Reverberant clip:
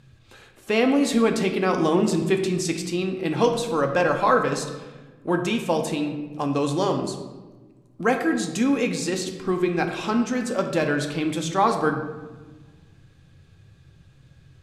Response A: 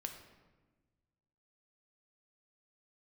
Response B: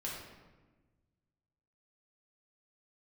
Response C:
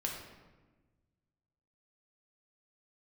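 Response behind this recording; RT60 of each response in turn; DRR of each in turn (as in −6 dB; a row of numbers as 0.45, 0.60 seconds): A; 1.3, 1.3, 1.3 seconds; 4.0, −5.5, −1.5 decibels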